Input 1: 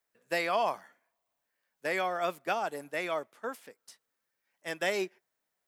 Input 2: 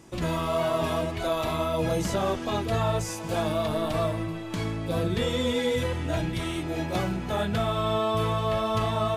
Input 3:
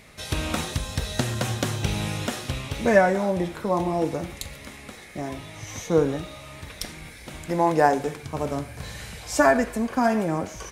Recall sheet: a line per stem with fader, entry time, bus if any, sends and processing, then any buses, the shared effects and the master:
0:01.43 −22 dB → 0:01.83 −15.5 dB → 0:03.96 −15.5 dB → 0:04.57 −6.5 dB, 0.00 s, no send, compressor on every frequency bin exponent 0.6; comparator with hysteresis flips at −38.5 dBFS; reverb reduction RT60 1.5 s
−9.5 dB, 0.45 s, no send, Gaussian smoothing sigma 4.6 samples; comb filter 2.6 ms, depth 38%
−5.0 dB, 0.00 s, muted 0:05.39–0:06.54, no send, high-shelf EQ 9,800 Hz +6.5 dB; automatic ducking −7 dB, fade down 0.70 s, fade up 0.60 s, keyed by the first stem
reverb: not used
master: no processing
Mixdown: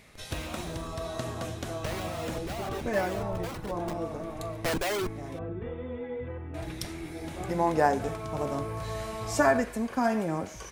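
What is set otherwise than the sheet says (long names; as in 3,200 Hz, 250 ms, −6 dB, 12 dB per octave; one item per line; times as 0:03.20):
stem 1 −22.0 dB → −10.5 dB
stem 3: missing high-shelf EQ 9,800 Hz +6.5 dB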